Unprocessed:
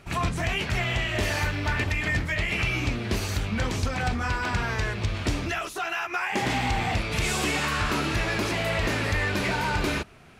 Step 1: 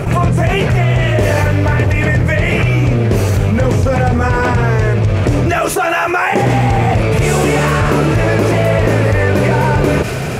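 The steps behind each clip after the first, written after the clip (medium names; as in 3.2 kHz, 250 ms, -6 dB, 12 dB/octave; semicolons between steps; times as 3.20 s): graphic EQ 125/500/4000 Hz +12/+11/-8 dB; feedback echo behind a high-pass 95 ms, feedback 84%, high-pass 3.1 kHz, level -18.5 dB; level flattener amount 70%; trim +4.5 dB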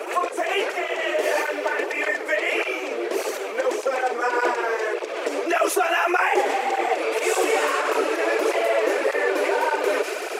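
steep high-pass 340 Hz 48 dB/octave; cancelling through-zero flanger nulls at 1.7 Hz, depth 6 ms; trim -3 dB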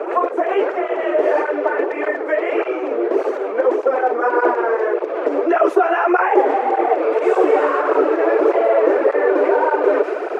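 FFT filter 140 Hz 0 dB, 290 Hz +14 dB, 1.4 kHz +8 dB, 2.4 kHz -3 dB, 13 kHz -22 dB; trim -4.5 dB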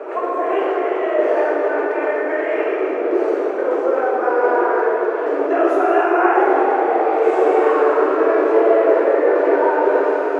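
plate-style reverb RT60 3 s, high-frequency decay 0.6×, DRR -5 dB; trim -6.5 dB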